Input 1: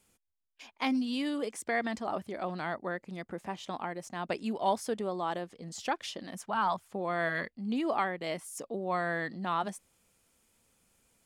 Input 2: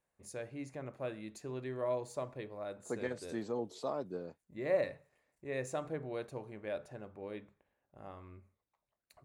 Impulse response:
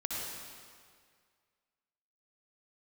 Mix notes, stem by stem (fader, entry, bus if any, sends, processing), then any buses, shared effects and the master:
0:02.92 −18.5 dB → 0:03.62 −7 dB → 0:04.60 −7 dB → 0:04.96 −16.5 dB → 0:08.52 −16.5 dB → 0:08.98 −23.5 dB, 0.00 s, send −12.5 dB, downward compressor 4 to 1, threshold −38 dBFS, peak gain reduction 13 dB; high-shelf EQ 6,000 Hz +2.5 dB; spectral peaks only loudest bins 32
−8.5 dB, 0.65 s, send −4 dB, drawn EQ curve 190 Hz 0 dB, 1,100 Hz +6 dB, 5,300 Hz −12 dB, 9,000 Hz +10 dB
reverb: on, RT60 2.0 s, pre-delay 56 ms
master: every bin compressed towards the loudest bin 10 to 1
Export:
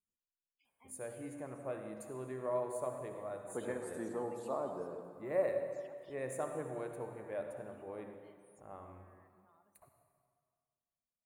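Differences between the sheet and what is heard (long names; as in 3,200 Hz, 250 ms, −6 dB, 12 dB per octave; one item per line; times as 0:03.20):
stem 1 −18.5 dB → −27.0 dB
master: missing every bin compressed towards the loudest bin 10 to 1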